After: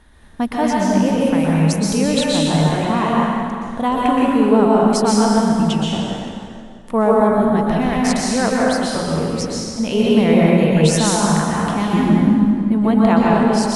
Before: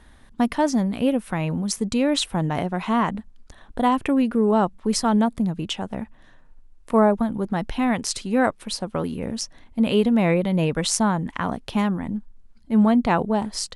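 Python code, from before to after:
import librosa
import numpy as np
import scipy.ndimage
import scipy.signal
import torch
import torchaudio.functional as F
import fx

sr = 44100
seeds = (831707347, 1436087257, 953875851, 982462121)

y = fx.peak_eq(x, sr, hz=260.0, db=13.5, octaves=1.7, at=(11.93, 12.72))
y = fx.rev_plate(y, sr, seeds[0], rt60_s=2.2, hf_ratio=0.8, predelay_ms=110, drr_db=-5.0)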